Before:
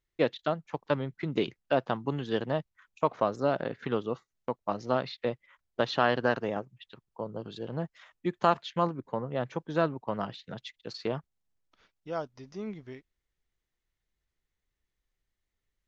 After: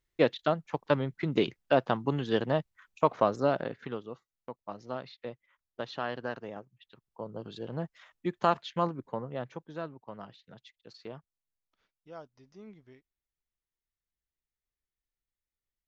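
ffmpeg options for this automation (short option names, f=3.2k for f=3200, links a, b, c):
-af "volume=10dB,afade=t=out:st=3.34:d=0.67:silence=0.266073,afade=t=in:st=6.73:d=0.76:silence=0.398107,afade=t=out:st=9.02:d=0.76:silence=0.316228"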